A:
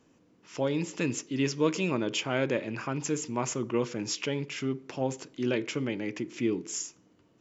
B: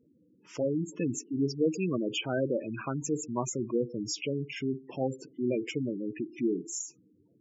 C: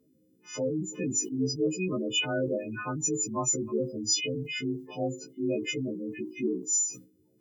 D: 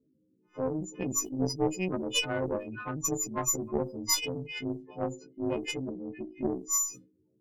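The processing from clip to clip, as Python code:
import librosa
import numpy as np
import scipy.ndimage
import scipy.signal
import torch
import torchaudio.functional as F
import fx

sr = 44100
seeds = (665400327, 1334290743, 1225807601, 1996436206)

y1 = fx.spec_gate(x, sr, threshold_db=-10, keep='strong')
y2 = fx.freq_snap(y1, sr, grid_st=3)
y2 = fx.sustainer(y2, sr, db_per_s=140.0)
y3 = fx.cheby_harmonics(y2, sr, harmonics=(2, 3, 7, 8), levels_db=(-7, -23, -33, -39), full_scale_db=-16.0)
y3 = fx.env_lowpass(y3, sr, base_hz=450.0, full_db=-29.0)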